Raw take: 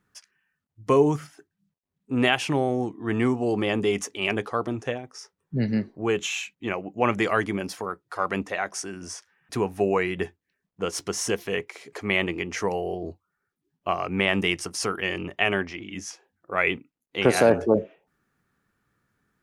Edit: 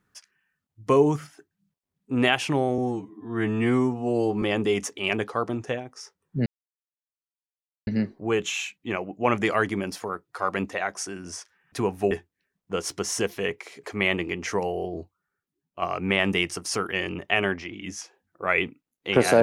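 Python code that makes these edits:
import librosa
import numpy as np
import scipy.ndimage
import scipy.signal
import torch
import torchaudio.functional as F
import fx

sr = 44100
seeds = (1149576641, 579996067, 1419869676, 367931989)

y = fx.edit(x, sr, fx.stretch_span(start_s=2.78, length_s=0.82, factor=2.0),
    fx.insert_silence(at_s=5.64, length_s=1.41),
    fx.cut(start_s=9.88, length_s=0.32),
    fx.fade_out_to(start_s=13.01, length_s=0.9, floor_db=-9.0), tone=tone)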